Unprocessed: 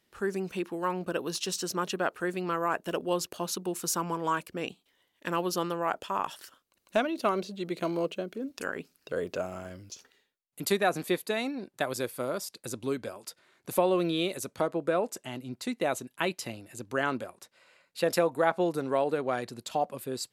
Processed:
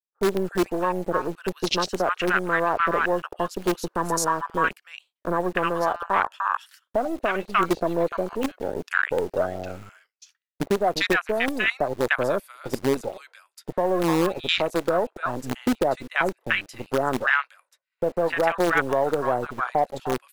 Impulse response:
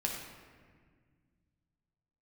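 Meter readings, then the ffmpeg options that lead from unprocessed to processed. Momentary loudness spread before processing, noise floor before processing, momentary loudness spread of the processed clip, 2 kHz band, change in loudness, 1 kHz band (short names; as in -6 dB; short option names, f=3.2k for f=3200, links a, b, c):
12 LU, -75 dBFS, 8 LU, +11.0 dB, +6.5 dB, +7.5 dB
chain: -filter_complex "[0:a]acrossover=split=1100[a][b];[b]adelay=300[c];[a][c]amix=inputs=2:normalize=0,afwtdn=0.0141,asplit=2[d][e];[e]asoftclip=type=tanh:threshold=-28.5dB,volume=-11.5dB[f];[d][f]amix=inputs=2:normalize=0,alimiter=limit=-22.5dB:level=0:latency=1:release=384,equalizer=f=1.8k:w=0.58:g=7.5,agate=range=-33dB:threshold=-56dB:ratio=3:detection=peak,acrossover=split=390[g][h];[g]acrusher=bits=6:dc=4:mix=0:aa=0.000001[i];[i][h]amix=inputs=2:normalize=0,volume=8dB"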